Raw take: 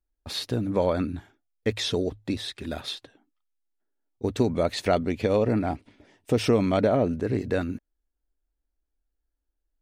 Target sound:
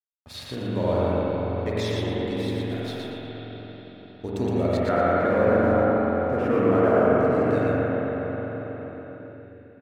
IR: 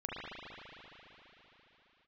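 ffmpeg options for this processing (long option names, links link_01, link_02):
-filter_complex "[0:a]asettb=1/sr,asplit=3[link_01][link_02][link_03];[link_01]atrim=end=4.774[link_04];[link_02]atrim=start=4.77:end=7.14,asetpts=PTS-STARTPTS,afade=type=in:duration=0.004:curve=qsin,afade=type=out:start_time=2.366:duration=0.004:curve=qsin,lowpass=frequency=1500:width_type=q:width=2.6[link_05];[link_03]atrim=start=7.136[link_06];[link_04][link_05]acrossfade=duration=0.004:curve1=hsin:curve2=qsin[link_07];[link_07][link_06]acrossfade=duration=0.004:curve1=qsin:curve2=hsin,aeval=exprs='sgn(val(0))*max(abs(val(0))-0.00473,0)':channel_layout=same,aecho=1:1:117|234|351|468:0.631|0.202|0.0646|0.0207[link_08];[1:a]atrim=start_sample=2205,asetrate=36603,aresample=44100[link_09];[link_08][link_09]afir=irnorm=-1:irlink=0,volume=-3.5dB"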